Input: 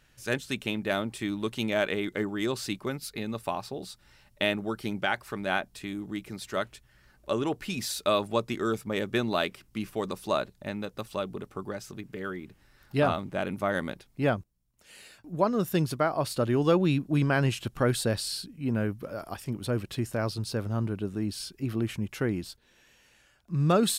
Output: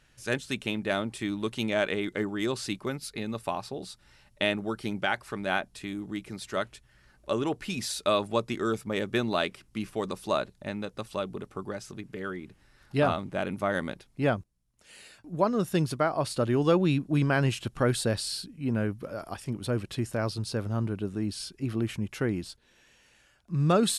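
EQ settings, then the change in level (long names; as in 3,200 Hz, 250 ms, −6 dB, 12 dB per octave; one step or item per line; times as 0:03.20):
linear-phase brick-wall low-pass 12,000 Hz
0.0 dB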